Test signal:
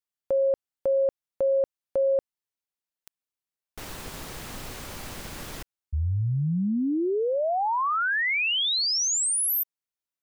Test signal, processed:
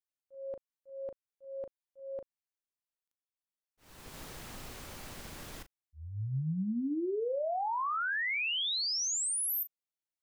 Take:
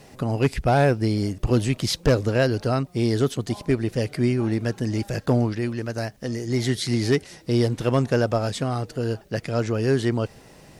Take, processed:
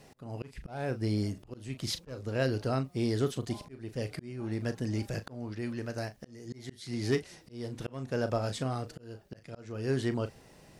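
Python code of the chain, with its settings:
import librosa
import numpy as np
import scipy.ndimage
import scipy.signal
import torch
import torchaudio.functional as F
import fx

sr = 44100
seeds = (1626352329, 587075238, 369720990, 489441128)

y = fx.doubler(x, sr, ms=38.0, db=-12)
y = fx.auto_swell(y, sr, attack_ms=433.0)
y = y * librosa.db_to_amplitude(-8.0)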